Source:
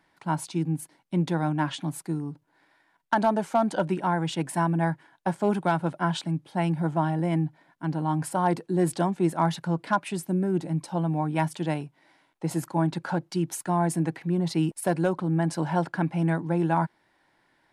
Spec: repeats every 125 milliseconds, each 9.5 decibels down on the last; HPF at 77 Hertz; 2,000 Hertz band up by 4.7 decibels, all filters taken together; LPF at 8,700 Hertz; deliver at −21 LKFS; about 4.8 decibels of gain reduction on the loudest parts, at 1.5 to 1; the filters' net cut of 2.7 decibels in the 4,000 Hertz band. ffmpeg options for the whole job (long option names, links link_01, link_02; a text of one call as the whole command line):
ffmpeg -i in.wav -af "highpass=77,lowpass=8700,equalizer=frequency=2000:width_type=o:gain=8,equalizer=frequency=4000:width_type=o:gain=-7,acompressor=threshold=-30dB:ratio=1.5,aecho=1:1:125|250|375|500:0.335|0.111|0.0365|0.012,volume=9dB" out.wav